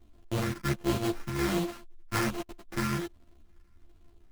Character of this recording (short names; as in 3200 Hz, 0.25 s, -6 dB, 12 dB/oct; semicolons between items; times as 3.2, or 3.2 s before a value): a buzz of ramps at a fixed pitch in blocks of 128 samples; phasing stages 4, 1.3 Hz, lowest notch 600–2700 Hz; aliases and images of a low sample rate 3600 Hz, jitter 20%; a shimmering, thickened sound